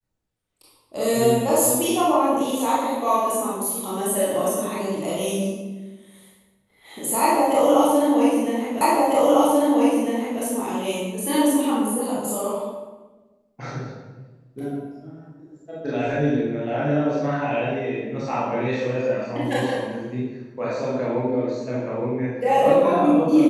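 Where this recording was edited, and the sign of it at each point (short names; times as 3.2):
8.81 repeat of the last 1.6 s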